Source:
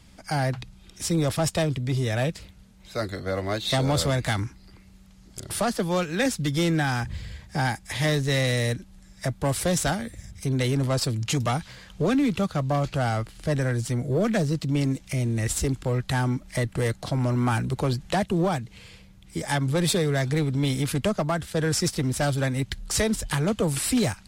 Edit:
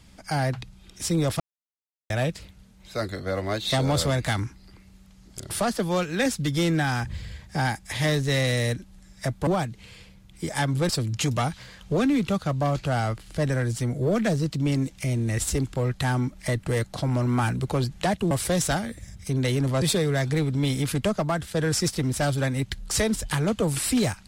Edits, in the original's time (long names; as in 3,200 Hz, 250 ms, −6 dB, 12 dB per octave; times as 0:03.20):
0:01.40–0:02.10: silence
0:09.47–0:10.98: swap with 0:18.40–0:19.82